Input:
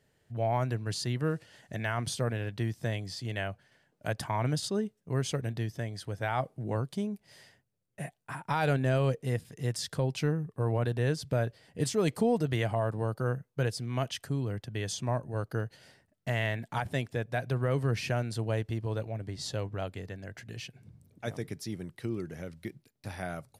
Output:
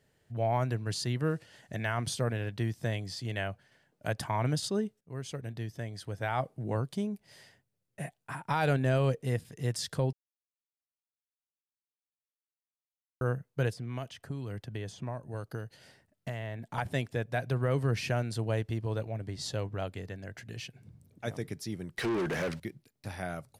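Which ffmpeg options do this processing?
ffmpeg -i in.wav -filter_complex "[0:a]asettb=1/sr,asplit=3[link_01][link_02][link_03];[link_01]atrim=end=13.734[link_04];[link_02]atrim=start=13.73:end=16.78,asetpts=PTS-STARTPTS,afade=type=in:duration=0.004:curve=qsin,afade=type=out:start_time=3.046:duration=0.004:curve=qsin,acrossover=split=1200|2600[link_05][link_06][link_07];[link_05]acompressor=threshold=-35dB:ratio=4[link_08];[link_06]acompressor=threshold=-53dB:ratio=4[link_09];[link_07]acompressor=threshold=-54dB:ratio=4[link_10];[link_08][link_09][link_10]amix=inputs=3:normalize=0[link_11];[link_03]atrim=start=16.776[link_12];[link_04][link_11]acrossfade=duration=0.004:curve1=hsin:curve2=qsin[link_13];[link_13][link_12]acrossfade=duration=0.004:curve1=qsin:curve2=hsin,asettb=1/sr,asplit=3[link_14][link_15][link_16];[link_14]atrim=end=21.974[link_17];[link_15]atrim=start=21.97:end=22.6,asetpts=PTS-STARTPTS,afade=type=in:duration=0.004:curve=qsin,afade=type=out:start_time=0.626:duration=0.004:curve=qsin,asplit=2[link_18][link_19];[link_19]highpass=frequency=720:poles=1,volume=31dB,asoftclip=type=tanh:threshold=-23.5dB[link_20];[link_18][link_20]amix=inputs=2:normalize=0,lowpass=frequency=3200:poles=1,volume=-6dB[link_21];[link_16]atrim=start=22.596[link_22];[link_17][link_21]acrossfade=duration=0.004:curve1=hsin:curve2=qsin[link_23];[link_23][link_22]acrossfade=duration=0.004:curve1=qsin:curve2=hsin,asplit=4[link_24][link_25][link_26][link_27];[link_24]atrim=end=5.01,asetpts=PTS-STARTPTS,afade=type=out:start_time=5.006:duration=0.004:curve=hsin:silence=0.237137[link_28];[link_25]atrim=start=5.01:end=10.13,asetpts=PTS-STARTPTS,afade=type=in:duration=1.89:curve=qsin:silence=0.237137,afade=type=out:start_time=5.116:duration=0.004:curve=hsin[link_29];[link_26]atrim=start=10.13:end=13.21,asetpts=PTS-STARTPTS,volume=0[link_30];[link_27]atrim=start=13.21,asetpts=PTS-STARTPTS,afade=type=in:duration=0.004:curve=hsin[link_31];[link_28][link_29][link_30][link_31]concat=n=4:v=0:a=1" out.wav

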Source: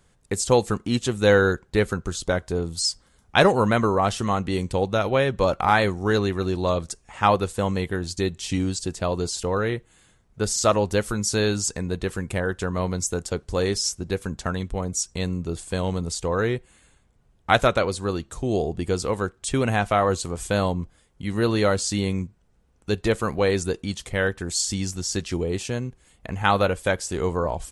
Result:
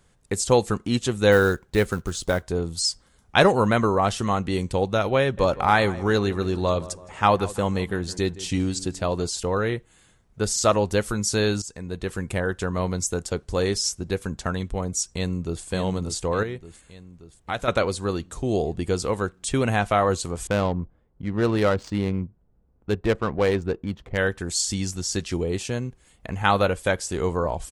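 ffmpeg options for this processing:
ffmpeg -i in.wav -filter_complex "[0:a]asplit=3[link_01][link_02][link_03];[link_01]afade=type=out:start_time=1.31:duration=0.02[link_04];[link_02]acrusher=bits=6:mode=log:mix=0:aa=0.000001,afade=type=in:start_time=1.31:duration=0.02,afade=type=out:start_time=2.43:duration=0.02[link_05];[link_03]afade=type=in:start_time=2.43:duration=0.02[link_06];[link_04][link_05][link_06]amix=inputs=3:normalize=0,asettb=1/sr,asplit=3[link_07][link_08][link_09];[link_07]atrim=end=5.214[link_10];[link_08]atrim=start=5.21:end=9.24,asetpts=PTS-STARTPTS,afade=type=in:duration=0.004:curve=qsin,afade=type=out:start_time=4.026:duration=0.004:curve=qsin,asplit=2[link_11][link_12];[link_12]adelay=164,lowpass=frequency=2100:poles=1,volume=-17dB,asplit=2[link_13][link_14];[link_14]adelay=164,lowpass=frequency=2100:poles=1,volume=0.51,asplit=2[link_15][link_16];[link_16]adelay=164,lowpass=frequency=2100:poles=1,volume=0.51,asplit=2[link_17][link_18];[link_18]adelay=164,lowpass=frequency=2100:poles=1,volume=0.51[link_19];[link_11][link_13][link_15][link_17][link_19]amix=inputs=5:normalize=0,atrim=end_sample=177723[link_20];[link_09]atrim=start=9.236[link_21];[link_10][link_20]acrossfade=duration=0.004:curve1=hsin:curve2=qsin[link_22];[link_22][link_21]acrossfade=duration=0.004:curve1=qsin:curve2=hsin,asplit=2[link_23][link_24];[link_24]afade=type=in:start_time=15.14:duration=0.01,afade=type=out:start_time=15.65:duration=0.01,aecho=0:1:580|1160|1740|2320|2900|3480|4060|4640:0.398107|0.238864|0.143319|0.0859911|0.0515947|0.0309568|0.0185741|0.0111445[link_25];[link_23][link_25]amix=inputs=2:normalize=0,asettb=1/sr,asplit=3[link_26][link_27][link_28];[link_26]atrim=end=16.434[link_29];[link_27]atrim=start=16.43:end=17.68,asetpts=PTS-STARTPTS,afade=type=in:duration=0.004:curve=qsin,afade=type=out:start_time=1.246:duration=0.004:curve=qsin,acompressor=threshold=-41dB:ratio=1.5:attack=3.2:release=140:knee=1:detection=peak[link_30];[link_28]atrim=start=17.676[link_31];[link_29][link_30]acrossfade=duration=0.004:curve1=hsin:curve2=qsin[link_32];[link_32][link_31]acrossfade=duration=0.004:curve1=qsin:curve2=hsin,asettb=1/sr,asplit=3[link_33][link_34][link_35];[link_33]atrim=end=20.474[link_36];[link_34]atrim=start=20.47:end=24.18,asetpts=PTS-STARTPTS,afade=type=in:duration=0.004:curve=qsin,afade=type=out:start_time=3.706:duration=0.004:curve=qsin,adynamicsmooth=sensitivity=2:basefreq=980[link_37];[link_35]atrim=start=24.176[link_38];[link_36][link_37]acrossfade=duration=0.004:curve1=hsin:curve2=qsin[link_39];[link_39][link_38]acrossfade=duration=0.004:curve1=qsin:curve2=hsin,asplit=2[link_40][link_41];[link_40]atrim=end=11.62,asetpts=PTS-STARTPTS,afade=type=out:start_time=11.616:duration=0.004:curve=hsin:silence=0.199526[link_42];[link_41]atrim=start=11.62,asetpts=PTS-STARTPTS,afade=type=in:duration=0.61:silence=0.199526[link_43];[link_42][link_43]concat=n=2:v=0:a=1" out.wav

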